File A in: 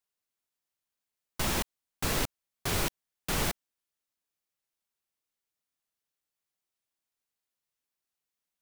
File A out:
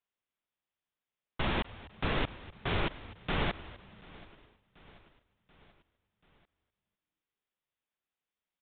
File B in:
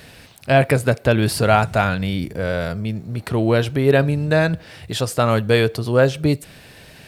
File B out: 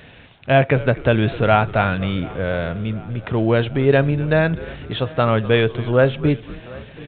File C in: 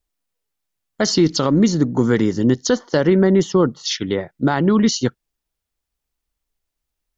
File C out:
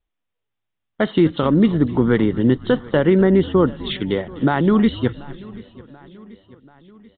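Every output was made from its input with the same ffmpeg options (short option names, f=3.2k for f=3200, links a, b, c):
-filter_complex "[0:a]asplit=2[a][b];[b]asplit=4[c][d][e][f];[c]adelay=250,afreqshift=-110,volume=-18dB[g];[d]adelay=500,afreqshift=-220,volume=-24.9dB[h];[e]adelay=750,afreqshift=-330,volume=-31.9dB[i];[f]adelay=1000,afreqshift=-440,volume=-38.8dB[j];[g][h][i][j]amix=inputs=4:normalize=0[k];[a][k]amix=inputs=2:normalize=0,aresample=8000,aresample=44100,asplit=2[l][m];[m]aecho=0:1:735|1470|2205|2940:0.0794|0.0453|0.0258|0.0147[n];[l][n]amix=inputs=2:normalize=0"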